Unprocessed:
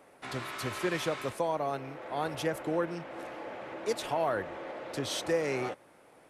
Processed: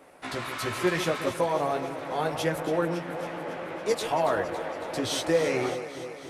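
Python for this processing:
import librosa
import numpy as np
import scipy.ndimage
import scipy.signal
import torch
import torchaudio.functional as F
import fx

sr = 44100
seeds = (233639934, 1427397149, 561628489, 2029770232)

p1 = fx.chorus_voices(x, sr, voices=6, hz=0.63, base_ms=15, depth_ms=4.2, mix_pct=40)
p2 = p1 + fx.echo_alternate(p1, sr, ms=139, hz=1300.0, feedback_pct=82, wet_db=-10, dry=0)
y = p2 * 10.0 ** (7.5 / 20.0)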